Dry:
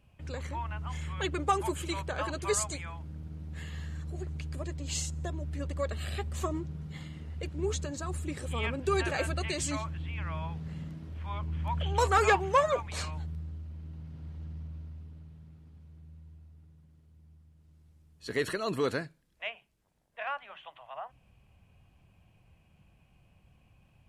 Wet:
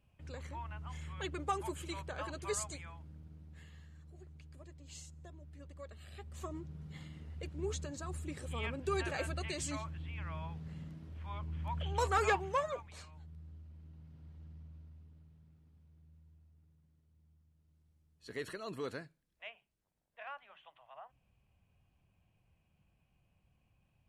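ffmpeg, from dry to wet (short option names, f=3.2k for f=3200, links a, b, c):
-af "volume=10dB,afade=t=out:st=2.75:d=1.13:silence=0.354813,afade=t=in:st=6.08:d=0.85:silence=0.298538,afade=t=out:st=12.29:d=0.79:silence=0.251189,afade=t=in:st=13.08:d=0.47:silence=0.421697"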